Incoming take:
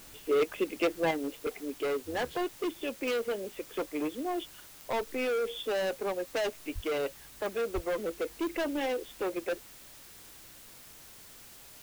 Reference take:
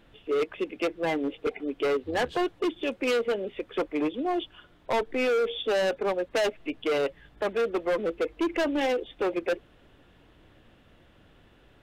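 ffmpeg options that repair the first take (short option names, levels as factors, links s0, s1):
-filter_complex "[0:a]adeclick=t=4,asplit=3[s0][s1][s2];[s0]afade=t=out:st=6.74:d=0.02[s3];[s1]highpass=f=140:w=0.5412,highpass=f=140:w=1.3066,afade=t=in:st=6.74:d=0.02,afade=t=out:st=6.86:d=0.02[s4];[s2]afade=t=in:st=6.86:d=0.02[s5];[s3][s4][s5]amix=inputs=3:normalize=0,asplit=3[s6][s7][s8];[s6]afade=t=out:st=7.74:d=0.02[s9];[s7]highpass=f=140:w=0.5412,highpass=f=140:w=1.3066,afade=t=in:st=7.74:d=0.02,afade=t=out:st=7.86:d=0.02[s10];[s8]afade=t=in:st=7.86:d=0.02[s11];[s9][s10][s11]amix=inputs=3:normalize=0,afwtdn=0.0025,asetnsamples=n=441:p=0,asendcmd='1.11 volume volume 5.5dB',volume=1"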